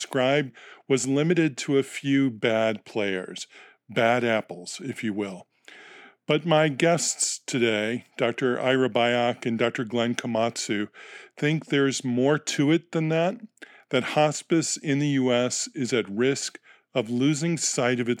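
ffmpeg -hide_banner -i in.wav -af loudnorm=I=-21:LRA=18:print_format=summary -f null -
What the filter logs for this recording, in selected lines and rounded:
Input Integrated:    -24.8 LUFS
Input True Peak:      -6.2 dBTP
Input LRA:             1.2 LU
Input Threshold:     -35.3 LUFS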